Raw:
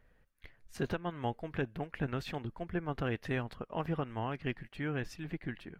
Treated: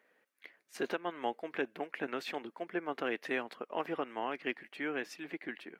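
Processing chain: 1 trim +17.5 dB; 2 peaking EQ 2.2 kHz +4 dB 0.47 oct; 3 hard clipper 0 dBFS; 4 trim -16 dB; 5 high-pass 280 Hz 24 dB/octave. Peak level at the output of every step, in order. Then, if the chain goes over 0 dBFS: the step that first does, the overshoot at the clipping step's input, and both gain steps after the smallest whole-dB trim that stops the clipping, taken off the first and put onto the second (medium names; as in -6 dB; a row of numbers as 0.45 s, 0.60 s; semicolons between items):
-4.0 dBFS, -3.0 dBFS, -3.0 dBFS, -19.0 dBFS, -19.5 dBFS; nothing clips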